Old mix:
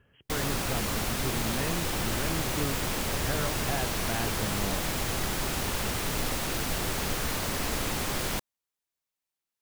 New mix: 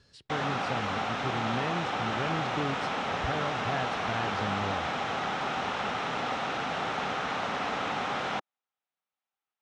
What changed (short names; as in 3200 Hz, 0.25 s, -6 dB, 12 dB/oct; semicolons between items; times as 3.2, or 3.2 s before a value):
speech: remove brick-wall FIR low-pass 3300 Hz; background: add speaker cabinet 200–4600 Hz, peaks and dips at 340 Hz -6 dB, 780 Hz +9 dB, 1300 Hz +7 dB, 4600 Hz -9 dB